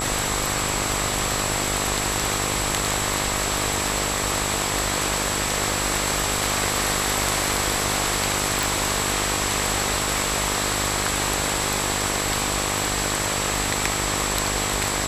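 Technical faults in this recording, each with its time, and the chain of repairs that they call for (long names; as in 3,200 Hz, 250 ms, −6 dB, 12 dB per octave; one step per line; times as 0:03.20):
mains buzz 50 Hz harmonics 26 −29 dBFS
whistle 7,700 Hz −29 dBFS
0:08.63: click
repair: click removal
hum removal 50 Hz, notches 26
notch filter 7,700 Hz, Q 30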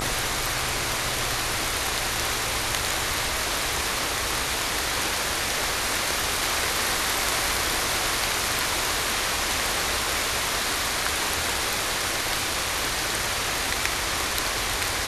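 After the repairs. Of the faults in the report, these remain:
none of them is left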